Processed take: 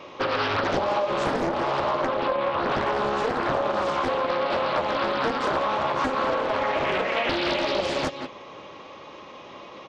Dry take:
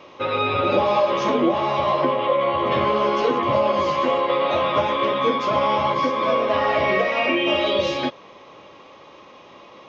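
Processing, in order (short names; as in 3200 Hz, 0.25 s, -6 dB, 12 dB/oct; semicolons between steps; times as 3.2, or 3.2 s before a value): echo 0.174 s -12.5 dB; compressor 4:1, threshold -25 dBFS, peak gain reduction 9.5 dB; Doppler distortion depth 0.93 ms; gain +2.5 dB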